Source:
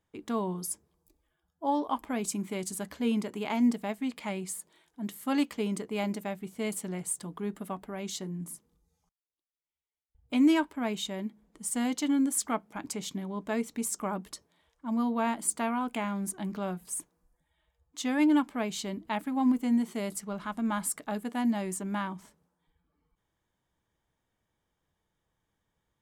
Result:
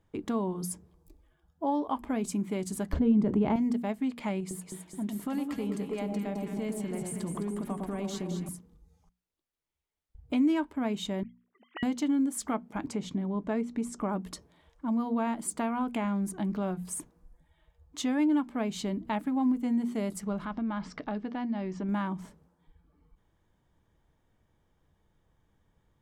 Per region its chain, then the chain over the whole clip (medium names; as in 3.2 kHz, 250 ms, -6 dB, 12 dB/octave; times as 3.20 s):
2.93–3.56 s: tilt EQ -4 dB/octave + band-stop 2.4 kHz, Q 24 + level flattener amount 50%
4.40–8.49 s: compression 3:1, threshold -37 dBFS + echo whose repeats swap between lows and highs 106 ms, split 1 kHz, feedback 74%, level -3.5 dB
11.23–11.83 s: formants replaced by sine waves + high-pass 890 Hz + upward expansion, over -57 dBFS
12.86–14.09 s: low-pass 9.8 kHz + treble shelf 3 kHz -6.5 dB
20.45–21.89 s: elliptic low-pass 5.5 kHz, stop band 60 dB + compression 2:1, threshold -38 dBFS
whole clip: tilt EQ -2 dB/octave; hum notches 60/120/180/240 Hz; compression 2:1, threshold -39 dBFS; trim +6 dB